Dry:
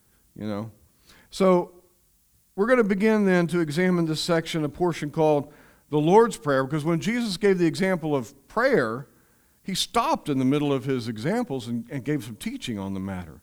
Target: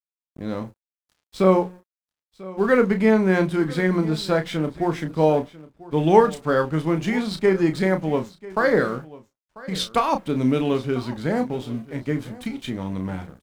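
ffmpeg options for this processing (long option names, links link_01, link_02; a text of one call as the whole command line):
ffmpeg -i in.wav -filter_complex "[0:a]lowpass=frequency=3800:poles=1,bandreject=frequency=180.6:width_type=h:width=4,bandreject=frequency=361.2:width_type=h:width=4,bandreject=frequency=541.8:width_type=h:width=4,aeval=exprs='sgn(val(0))*max(abs(val(0))-0.00447,0)':channel_layout=same,asplit=2[link_01][link_02];[link_02]adelay=32,volume=-8dB[link_03];[link_01][link_03]amix=inputs=2:normalize=0,aecho=1:1:993:0.106,volume=2dB" out.wav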